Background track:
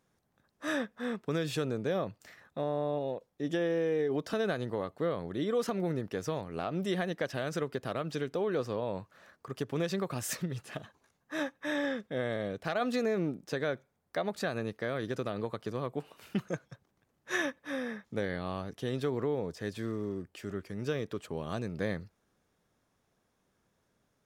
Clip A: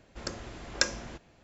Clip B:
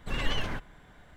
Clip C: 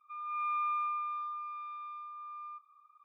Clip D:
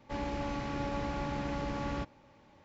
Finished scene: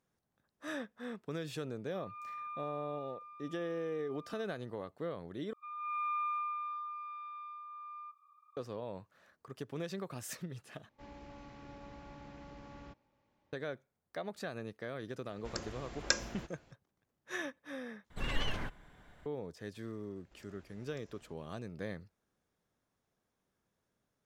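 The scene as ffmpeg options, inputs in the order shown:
-filter_complex "[3:a]asplit=2[a][b];[1:a]asplit=2[c][d];[0:a]volume=-8dB[e];[d]acompressor=threshold=-49dB:ratio=6:attack=3.2:release=140:knee=1:detection=peak[f];[e]asplit=4[g][h][i][j];[g]atrim=end=5.534[k];[b]atrim=end=3.04,asetpts=PTS-STARTPTS,volume=-2.5dB[l];[h]atrim=start=8.566:end=10.894[m];[4:a]atrim=end=2.64,asetpts=PTS-STARTPTS,volume=-16dB[n];[i]atrim=start=13.526:end=18.104[o];[2:a]atrim=end=1.16,asetpts=PTS-STARTPTS,volume=-5dB[p];[j]atrim=start=19.256[q];[a]atrim=end=3.04,asetpts=PTS-STARTPTS,volume=-11dB,afade=t=in:d=0.004:c=hsin,afade=t=out:st=3.036:d=0.004:c=hsin,adelay=1840[r];[c]atrim=end=1.43,asetpts=PTS-STARTPTS,volume=-4dB,afade=t=in:d=0.004:c=hsin,afade=t=out:st=1.426:d=0.004:c=hsin,adelay=15290[s];[f]atrim=end=1.43,asetpts=PTS-STARTPTS,volume=-12.5dB,afade=t=in:d=0.004:c=hsin,afade=t=out:st=1.426:d=0.004:c=hsin,adelay=20160[t];[k][l]acrossfade=d=0.004:c1=hsin:c2=hsin[u];[u][m]acrossfade=d=0.004:c1=hsin:c2=hsin[v];[v][n]acrossfade=d=0.004:c1=hsin:c2=hsin[w];[w][o]acrossfade=d=0.004:c1=hsin:c2=hsin[x];[x][p]acrossfade=d=0.004:c1=hsin:c2=hsin[y];[y][q]acrossfade=d=0.004:c1=hsin:c2=hsin[z];[z][r][s][t]amix=inputs=4:normalize=0"

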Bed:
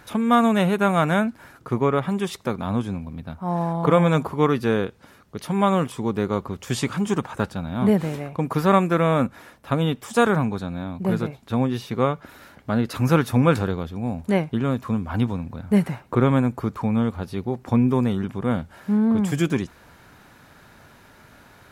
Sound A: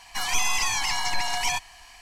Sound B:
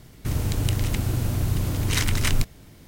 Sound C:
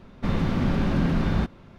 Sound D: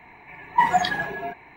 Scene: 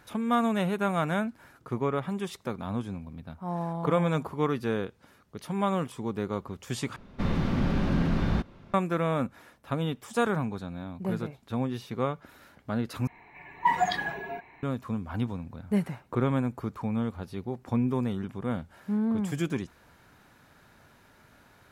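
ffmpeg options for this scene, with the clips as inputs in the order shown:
-filter_complex "[0:a]volume=-8dB,asplit=3[a][b][c];[a]atrim=end=6.964[d];[3:a]atrim=end=1.78,asetpts=PTS-STARTPTS,volume=-3dB[e];[b]atrim=start=8.736:end=13.074[f];[4:a]atrim=end=1.56,asetpts=PTS-STARTPTS,volume=-5.5dB[g];[c]atrim=start=14.626[h];[d][e]acrossfade=d=0.004:c1=hsin:c2=hsin[i];[i][f]acrossfade=d=0.004:c1=hsin:c2=hsin[j];[j][g]acrossfade=d=0.004:c1=hsin:c2=hsin[k];[k][h]acrossfade=d=0.004:c1=hsin:c2=hsin"

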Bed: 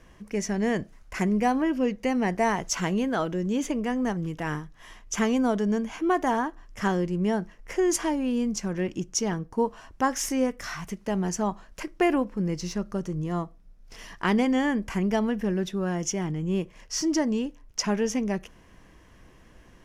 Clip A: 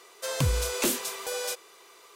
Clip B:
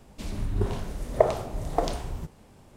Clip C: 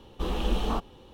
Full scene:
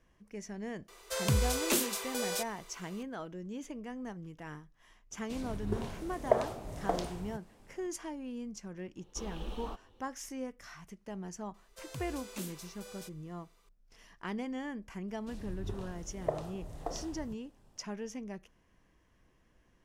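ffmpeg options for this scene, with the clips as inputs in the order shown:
-filter_complex "[1:a]asplit=2[a][b];[2:a]asplit=2[c][d];[0:a]volume=-15dB[e];[c]lowshelf=f=100:g=-8[f];[3:a]equalizer=f=150:w=1.5:g=-5.5[g];[d]bandreject=f=2.2k:w=9.3[h];[a]atrim=end=2.15,asetpts=PTS-STARTPTS,volume=-3dB,afade=t=in:d=0.004:c=hsin,afade=t=out:st=2.146:d=0.004:c=hsin,adelay=880[i];[f]atrim=end=2.76,asetpts=PTS-STARTPTS,volume=-6dB,afade=t=in:d=0.004:c=hsin,afade=t=out:st=2.756:d=0.004:c=hsin,adelay=5110[j];[g]atrim=end=1.13,asetpts=PTS-STARTPTS,volume=-13.5dB,afade=t=in:d=0.004:c=hsin,afade=t=out:st=1.126:d=0.004:c=hsin,adelay=8960[k];[b]atrim=end=2.15,asetpts=PTS-STARTPTS,volume=-17.5dB,afade=t=in:d=0.004:c=hsin,afade=t=out:st=2.146:d=0.004:c=hsin,adelay=508914S[l];[h]atrim=end=2.76,asetpts=PTS-STARTPTS,volume=-13dB,afade=t=in:d=0.004:c=hsin,afade=t=out:st=2.756:d=0.004:c=hsin,adelay=665028S[m];[e][i][j][k][l][m]amix=inputs=6:normalize=0"

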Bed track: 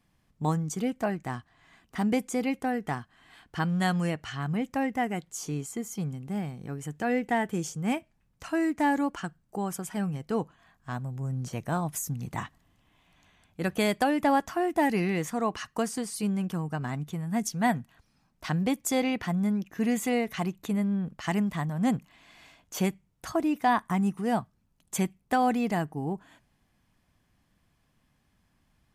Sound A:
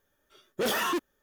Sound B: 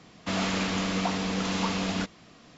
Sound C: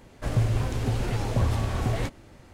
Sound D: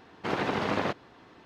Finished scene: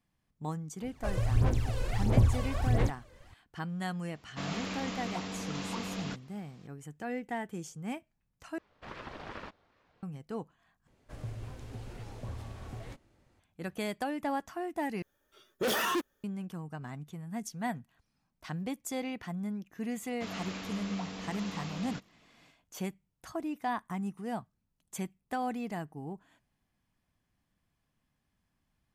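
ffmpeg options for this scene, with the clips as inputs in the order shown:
-filter_complex "[3:a]asplit=2[a][b];[2:a]asplit=2[c][d];[0:a]volume=-9.5dB[e];[a]aphaser=in_gain=1:out_gain=1:delay=2:decay=0.73:speed=1.5:type=sinusoidal[f];[4:a]aeval=exprs='val(0)*sin(2*PI*510*n/s+510*0.7/2.5*sin(2*PI*2.5*n/s))':c=same[g];[e]asplit=4[h][i][j][k];[h]atrim=end=8.584[l];[g]atrim=end=1.45,asetpts=PTS-STARTPTS,volume=-12.5dB[m];[i]atrim=start=10.026:end=10.874[n];[b]atrim=end=2.53,asetpts=PTS-STARTPTS,volume=-17dB[o];[j]atrim=start=13.396:end=15.024[p];[1:a]atrim=end=1.22,asetpts=PTS-STARTPTS,volume=-2dB[q];[k]atrim=start=16.236[r];[f]atrim=end=2.53,asetpts=PTS-STARTPTS,volume=-9dB,afade=t=in:d=0.004:c=hsin,afade=t=out:st=2.526:d=0.004:c=hsin,adelay=810[s];[c]atrim=end=2.57,asetpts=PTS-STARTPTS,volume=-9.5dB,afade=t=in:d=0.004:c=hsin,afade=t=out:st=2.566:d=0.004:c=hsin,adelay=4100[t];[d]atrim=end=2.57,asetpts=PTS-STARTPTS,volume=-12.5dB,afade=t=in:d=0.004:c=hsin,afade=t=out:st=2.566:d=0.004:c=hsin,adelay=19940[u];[l][m]acrossfade=d=0.004:c1=hsin:c2=hsin[v];[v][n]acrossfade=d=0.004:c1=hsin:c2=hsin[w];[w][o]acrossfade=d=0.004:c1=hsin:c2=hsin[x];[x][p]acrossfade=d=0.004:c1=hsin:c2=hsin[y];[y][q]acrossfade=d=0.004:c1=hsin:c2=hsin[z];[z][r]acrossfade=d=0.004:c1=hsin:c2=hsin[aa];[aa][s][t][u]amix=inputs=4:normalize=0"

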